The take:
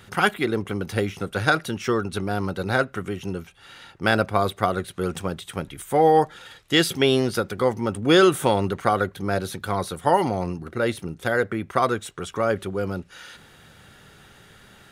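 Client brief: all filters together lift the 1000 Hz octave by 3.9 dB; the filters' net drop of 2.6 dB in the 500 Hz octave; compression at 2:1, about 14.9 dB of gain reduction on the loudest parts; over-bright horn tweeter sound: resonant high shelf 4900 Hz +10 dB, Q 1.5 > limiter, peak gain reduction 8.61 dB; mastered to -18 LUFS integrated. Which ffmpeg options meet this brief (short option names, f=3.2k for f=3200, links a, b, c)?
-af "equalizer=f=500:t=o:g=-5,equalizer=f=1k:t=o:g=7.5,acompressor=threshold=-40dB:ratio=2,highshelf=f=4.9k:t=q:w=1.5:g=10,volume=18.5dB,alimiter=limit=-4.5dB:level=0:latency=1"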